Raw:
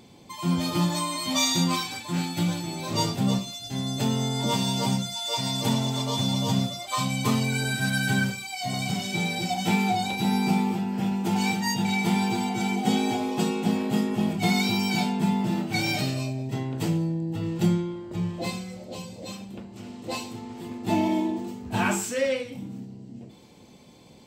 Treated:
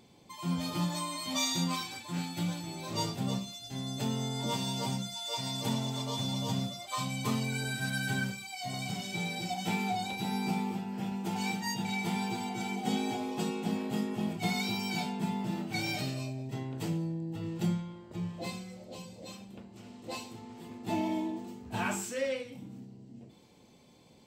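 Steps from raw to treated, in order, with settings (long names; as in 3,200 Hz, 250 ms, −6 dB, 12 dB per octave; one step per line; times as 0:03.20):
mains-hum notches 50/100/150/200/250/300/350 Hz
level −7.5 dB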